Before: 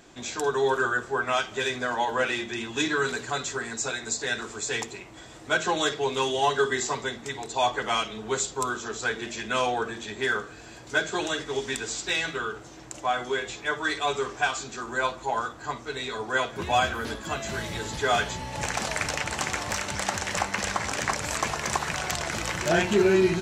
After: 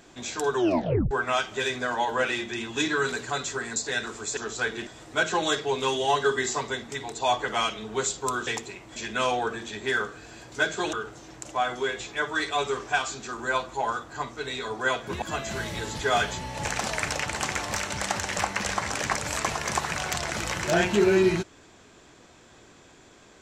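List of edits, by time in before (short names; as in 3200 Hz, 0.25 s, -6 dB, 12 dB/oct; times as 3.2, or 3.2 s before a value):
0.56 tape stop 0.55 s
3.76–4.11 cut
4.72–5.21 swap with 8.81–9.31
11.28–12.42 cut
16.71–17.2 cut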